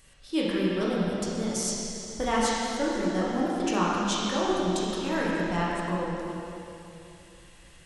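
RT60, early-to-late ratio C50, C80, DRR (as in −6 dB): 3.0 s, −3.0 dB, −1.5 dB, −6.5 dB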